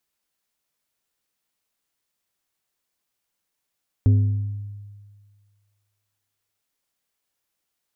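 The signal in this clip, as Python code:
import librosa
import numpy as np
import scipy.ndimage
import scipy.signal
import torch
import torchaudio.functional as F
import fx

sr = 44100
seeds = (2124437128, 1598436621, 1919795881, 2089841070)

y = fx.strike_glass(sr, length_s=2.56, level_db=-11, body='plate', hz=102.0, decay_s=1.77, tilt_db=11, modes=5)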